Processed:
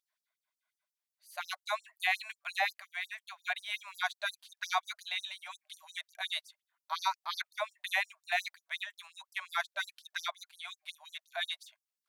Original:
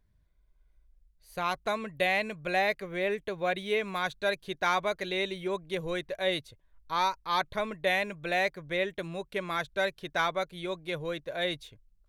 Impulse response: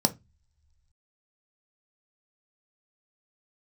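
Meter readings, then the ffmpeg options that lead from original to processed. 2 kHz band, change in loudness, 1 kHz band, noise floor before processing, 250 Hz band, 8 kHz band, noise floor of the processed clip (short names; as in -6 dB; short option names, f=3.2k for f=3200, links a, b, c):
-3.5 dB, -5.5 dB, -6.5 dB, -67 dBFS, under -40 dB, 0.0 dB, under -85 dBFS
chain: -af "afftfilt=real='re*gte(b*sr/1024,570*pow(4900/570,0.5+0.5*sin(2*PI*5.6*pts/sr)))':imag='im*gte(b*sr/1024,570*pow(4900/570,0.5+0.5*sin(2*PI*5.6*pts/sr)))':win_size=1024:overlap=0.75"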